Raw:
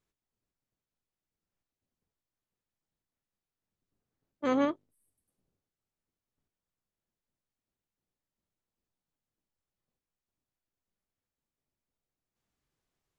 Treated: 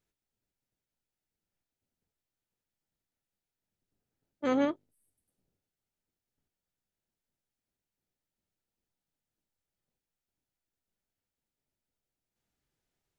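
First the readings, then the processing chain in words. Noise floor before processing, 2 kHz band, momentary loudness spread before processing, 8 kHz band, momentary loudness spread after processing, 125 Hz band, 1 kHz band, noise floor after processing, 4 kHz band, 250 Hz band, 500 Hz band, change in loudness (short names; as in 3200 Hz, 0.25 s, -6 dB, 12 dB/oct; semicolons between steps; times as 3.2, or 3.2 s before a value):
under -85 dBFS, 0.0 dB, 11 LU, n/a, 11 LU, 0.0 dB, -2.0 dB, under -85 dBFS, 0.0 dB, 0.0 dB, 0.0 dB, 0.0 dB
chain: notch 1100 Hz, Q 6.6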